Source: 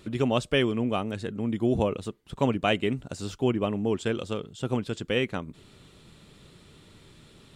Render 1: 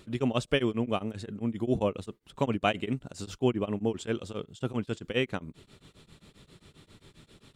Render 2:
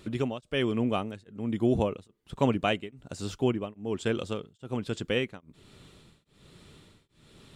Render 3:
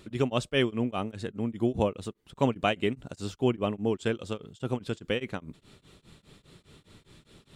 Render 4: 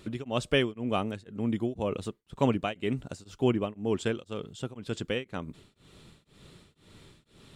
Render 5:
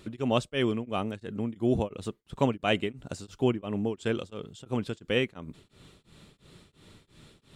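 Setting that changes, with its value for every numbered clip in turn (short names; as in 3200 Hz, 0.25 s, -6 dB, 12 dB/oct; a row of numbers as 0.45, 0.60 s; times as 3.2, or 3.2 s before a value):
beating tremolo, nulls at: 7.5, 1.2, 4.9, 2, 2.9 Hz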